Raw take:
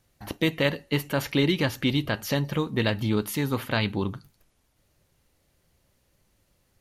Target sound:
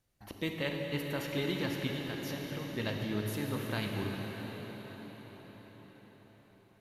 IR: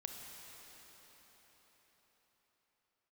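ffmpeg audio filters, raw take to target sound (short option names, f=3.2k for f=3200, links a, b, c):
-filter_complex "[0:a]asettb=1/sr,asplit=3[a][b][c];[a]atrim=end=1.874[d];[b]atrim=start=1.87:end=2.76,asetpts=PTS-STARTPTS,afade=t=in:d=0.004:c=qsin,afade=t=out:st=0.886:d=0.004:c=qsin,acompressor=threshold=-27dB:ratio=6[e];[c]atrim=start=2.756[f];[d][e]acrossfade=d=0.004:c1=hsin:c2=qsin[g];[g][f]acrossfade=d=0.004:c1=qsin:c2=hsin[h];[1:a]atrim=start_sample=2205,asetrate=34839,aresample=44100[i];[h][i]afir=irnorm=-1:irlink=0,volume=-8dB"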